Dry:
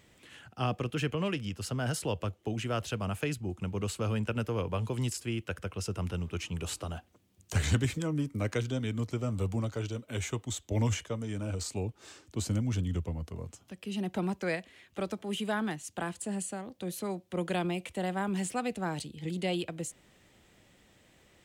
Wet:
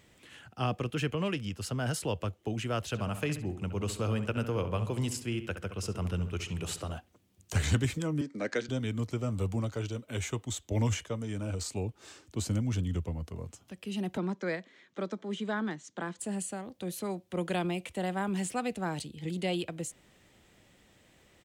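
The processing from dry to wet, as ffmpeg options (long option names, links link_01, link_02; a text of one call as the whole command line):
ffmpeg -i in.wav -filter_complex "[0:a]asplit=3[link_01][link_02][link_03];[link_01]afade=type=out:start_time=2.93:duration=0.02[link_04];[link_02]asplit=2[link_05][link_06];[link_06]adelay=67,lowpass=frequency=3100:poles=1,volume=-10dB,asplit=2[link_07][link_08];[link_08]adelay=67,lowpass=frequency=3100:poles=1,volume=0.52,asplit=2[link_09][link_10];[link_10]adelay=67,lowpass=frequency=3100:poles=1,volume=0.52,asplit=2[link_11][link_12];[link_12]adelay=67,lowpass=frequency=3100:poles=1,volume=0.52,asplit=2[link_13][link_14];[link_14]adelay=67,lowpass=frequency=3100:poles=1,volume=0.52,asplit=2[link_15][link_16];[link_16]adelay=67,lowpass=frequency=3100:poles=1,volume=0.52[link_17];[link_05][link_07][link_09][link_11][link_13][link_15][link_17]amix=inputs=7:normalize=0,afade=type=in:start_time=2.93:duration=0.02,afade=type=out:start_time=6.96:duration=0.02[link_18];[link_03]afade=type=in:start_time=6.96:duration=0.02[link_19];[link_04][link_18][link_19]amix=inputs=3:normalize=0,asettb=1/sr,asplit=3[link_20][link_21][link_22];[link_20]atrim=end=8.214[link_23];[link_21]atrim=start=8.21:end=8.69,asetpts=PTS-STARTPTS,afade=type=in:duration=0.004:curve=qsin,afade=type=out:start_time=0.476:duration=0.004:curve=qsin,highpass=frequency=200:width=0.5412,highpass=frequency=200:width=1.3066,equalizer=frequency=550:width_type=q:width=4:gain=3,equalizer=frequency=1100:width_type=q:width=4:gain=-5,equalizer=frequency=1700:width_type=q:width=4:gain=8,equalizer=frequency=2800:width_type=q:width=4:gain=-6,equalizer=frequency=4400:width_type=q:width=4:gain=6,lowpass=frequency=7200:width=0.5412,lowpass=frequency=7200:width=1.3066[link_24];[link_22]atrim=start=8.686[link_25];[link_23][link_24]acrossfade=duration=0.004:curve1=hsin:curve2=qsin[link_26];[link_26][link_25]acrossfade=duration=0.004:curve1=qsin:curve2=hsin,asettb=1/sr,asplit=3[link_27][link_28][link_29];[link_27]atrim=end=14.174[link_30];[link_28]atrim=start=14.17:end=16.19,asetpts=PTS-STARTPTS,afade=type=in:duration=0.004:curve=qsin,afade=type=out:start_time=2.016:duration=0.004:curve=qsin,highpass=frequency=160:width=0.5412,highpass=frequency=160:width=1.3066,equalizer=frequency=740:width_type=q:width=4:gain=-6,equalizer=frequency=2700:width_type=q:width=4:gain=-10,equalizer=frequency=4800:width_type=q:width=4:gain=-5,lowpass=frequency=6300:width=0.5412,lowpass=frequency=6300:width=1.3066[link_31];[link_29]atrim=start=16.186[link_32];[link_30][link_31]acrossfade=duration=0.004:curve1=hsin:curve2=qsin[link_33];[link_33][link_32]acrossfade=duration=0.004:curve1=qsin:curve2=hsin" out.wav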